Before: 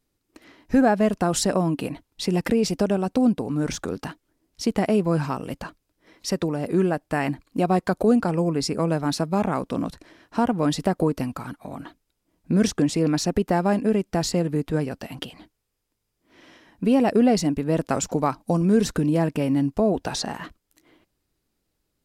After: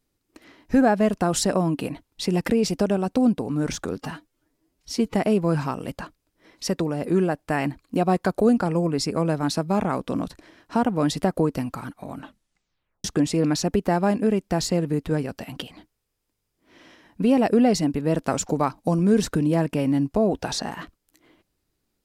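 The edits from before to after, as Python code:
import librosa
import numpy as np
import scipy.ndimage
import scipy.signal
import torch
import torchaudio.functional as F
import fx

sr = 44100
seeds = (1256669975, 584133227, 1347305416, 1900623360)

y = fx.edit(x, sr, fx.stretch_span(start_s=4.02, length_s=0.75, factor=1.5),
    fx.tape_stop(start_s=11.8, length_s=0.87), tone=tone)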